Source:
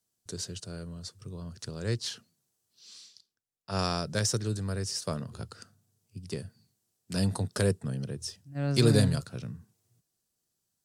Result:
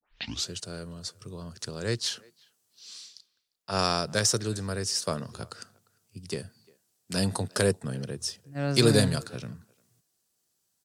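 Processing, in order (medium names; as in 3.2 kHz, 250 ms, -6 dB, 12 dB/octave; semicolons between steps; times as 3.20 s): tape start-up on the opening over 0.49 s; bass shelf 220 Hz -9 dB; speakerphone echo 350 ms, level -25 dB; trim +5.5 dB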